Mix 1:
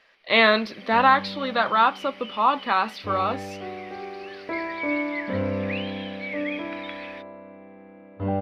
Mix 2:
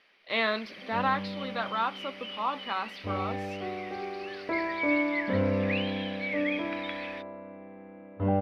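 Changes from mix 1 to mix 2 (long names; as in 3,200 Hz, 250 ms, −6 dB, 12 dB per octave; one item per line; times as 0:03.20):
speech −10.5 dB
second sound: add high-frequency loss of the air 190 metres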